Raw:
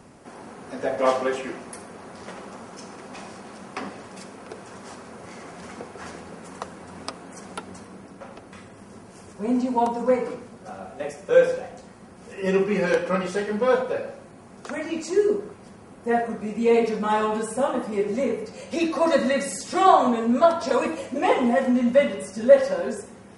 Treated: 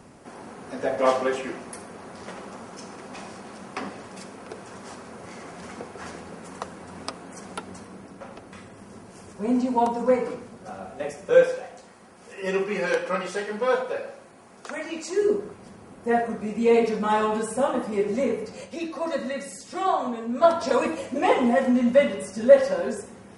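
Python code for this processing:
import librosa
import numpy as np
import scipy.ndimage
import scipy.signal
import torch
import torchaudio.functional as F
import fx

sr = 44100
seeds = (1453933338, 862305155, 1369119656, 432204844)

y = fx.low_shelf(x, sr, hz=290.0, db=-11.5, at=(11.43, 15.22))
y = fx.edit(y, sr, fx.fade_down_up(start_s=18.64, length_s=1.81, db=-8.0, fade_s=0.37, curve='exp'), tone=tone)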